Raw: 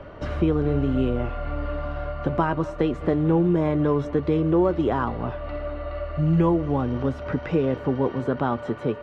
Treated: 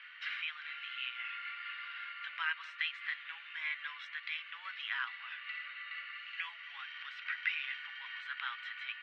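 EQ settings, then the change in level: steep high-pass 1.9 kHz 36 dB/octave; distance through air 400 m; +12.5 dB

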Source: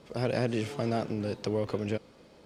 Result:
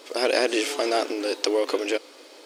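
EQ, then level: brick-wall FIR high-pass 260 Hz; treble shelf 2.2 kHz +10.5 dB; +7.5 dB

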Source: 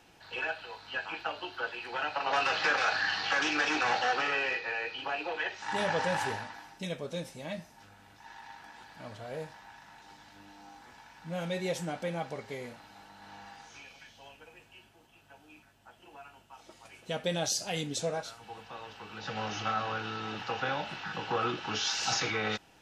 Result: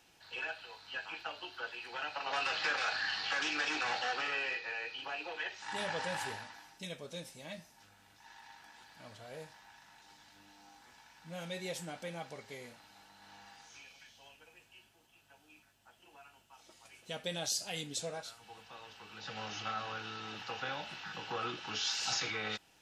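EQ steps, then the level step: treble shelf 2.3 kHz +9 dB; dynamic bell 6 kHz, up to -4 dB, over -48 dBFS, Q 4.4; -9.0 dB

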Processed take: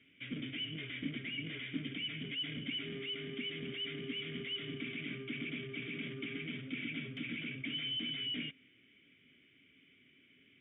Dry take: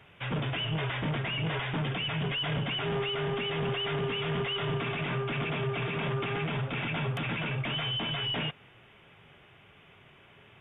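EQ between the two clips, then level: vowel filter i; peaking EQ 67 Hz +9 dB 0.61 oct; +3.5 dB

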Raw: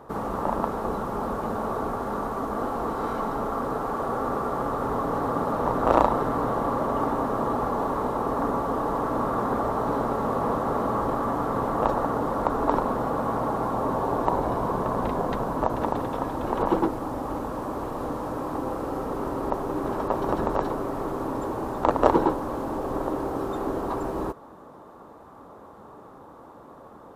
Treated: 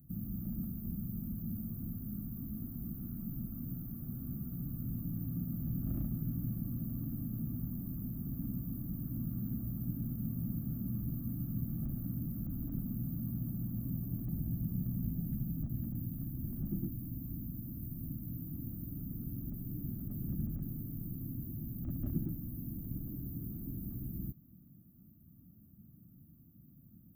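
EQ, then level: inverse Chebyshev band-stop 430–9000 Hz, stop band 50 dB; RIAA curve recording; treble shelf 4.5 kHz -9 dB; +11.5 dB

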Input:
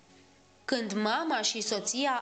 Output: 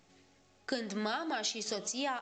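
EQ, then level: band-stop 940 Hz, Q 9.3; -5.5 dB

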